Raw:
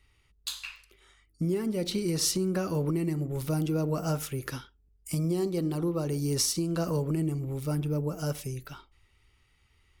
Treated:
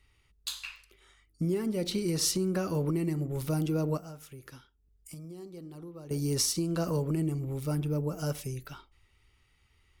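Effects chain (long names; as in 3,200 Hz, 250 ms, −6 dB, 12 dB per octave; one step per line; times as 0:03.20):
0:03.97–0:06.11: downward compressor 2 to 1, threshold −54 dBFS, peak gain reduction 16 dB
level −1 dB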